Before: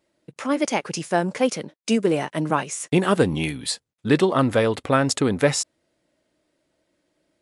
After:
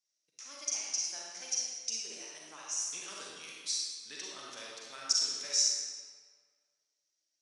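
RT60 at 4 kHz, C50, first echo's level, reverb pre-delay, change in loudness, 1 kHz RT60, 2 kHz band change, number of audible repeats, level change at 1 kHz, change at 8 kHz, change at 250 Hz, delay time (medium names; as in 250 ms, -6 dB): 1.2 s, -2.5 dB, no echo, 35 ms, -11.0 dB, 1.8 s, -19.5 dB, no echo, -25.0 dB, -0.5 dB, -37.5 dB, no echo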